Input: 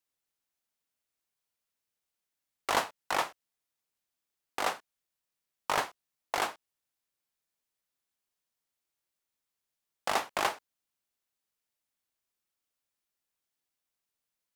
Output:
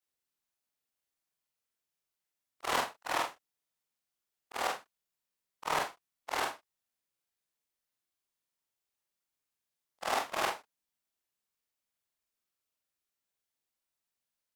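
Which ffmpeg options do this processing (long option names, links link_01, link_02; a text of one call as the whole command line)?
ffmpeg -i in.wav -af "afftfilt=real='re':imag='-im':win_size=4096:overlap=0.75,volume=2.5dB" out.wav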